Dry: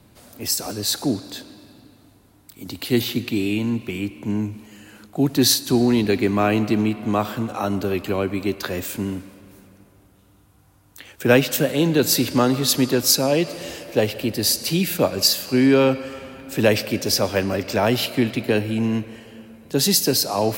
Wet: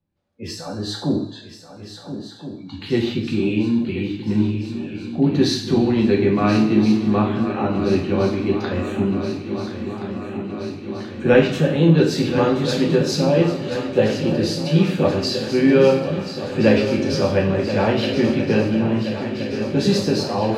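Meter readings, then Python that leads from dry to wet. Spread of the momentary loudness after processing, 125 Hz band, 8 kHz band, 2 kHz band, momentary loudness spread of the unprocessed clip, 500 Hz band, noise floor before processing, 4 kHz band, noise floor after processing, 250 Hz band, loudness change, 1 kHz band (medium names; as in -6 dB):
13 LU, +4.5 dB, -12.5 dB, -0.5 dB, 12 LU, +3.0 dB, -55 dBFS, -5.0 dB, -39 dBFS, +3.0 dB, +1.0 dB, +0.5 dB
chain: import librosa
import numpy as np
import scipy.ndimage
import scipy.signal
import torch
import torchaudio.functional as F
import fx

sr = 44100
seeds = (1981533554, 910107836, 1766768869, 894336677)

y = scipy.signal.sosfilt(scipy.signal.butter(2, 3600.0, 'lowpass', fs=sr, output='sos'), x)
y = fx.noise_reduce_blind(y, sr, reduce_db=28)
y = fx.low_shelf(y, sr, hz=270.0, db=7.5)
y = fx.echo_swing(y, sr, ms=1373, ratio=3, feedback_pct=68, wet_db=-11)
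y = fx.rev_double_slope(y, sr, seeds[0], early_s=0.54, late_s=2.8, knee_db=-27, drr_db=-2.0)
y = y * librosa.db_to_amplitude(-5.0)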